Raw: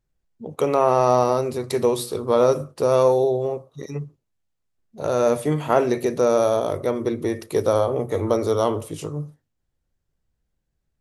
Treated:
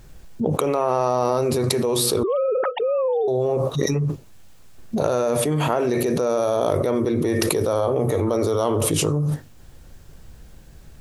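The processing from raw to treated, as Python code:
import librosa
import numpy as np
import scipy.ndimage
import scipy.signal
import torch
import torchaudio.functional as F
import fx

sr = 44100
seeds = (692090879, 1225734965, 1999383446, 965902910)

y = fx.sine_speech(x, sr, at=(2.23, 3.28))
y = fx.notch(y, sr, hz=2000.0, q=25.0)
y = fx.env_flatten(y, sr, amount_pct=100)
y = F.gain(torch.from_numpy(y), -9.0).numpy()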